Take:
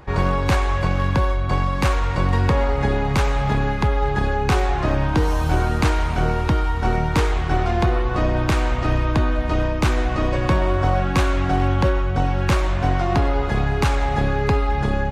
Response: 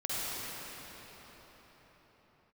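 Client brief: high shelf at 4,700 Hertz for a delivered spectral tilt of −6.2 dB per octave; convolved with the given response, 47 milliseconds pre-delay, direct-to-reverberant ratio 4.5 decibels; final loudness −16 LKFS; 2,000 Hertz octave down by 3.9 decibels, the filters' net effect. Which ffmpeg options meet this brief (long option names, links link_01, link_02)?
-filter_complex "[0:a]equalizer=frequency=2000:width_type=o:gain=-6,highshelf=frequency=4700:gain=5,asplit=2[link_01][link_02];[1:a]atrim=start_sample=2205,adelay=47[link_03];[link_02][link_03]afir=irnorm=-1:irlink=0,volume=-12dB[link_04];[link_01][link_04]amix=inputs=2:normalize=0,volume=3.5dB"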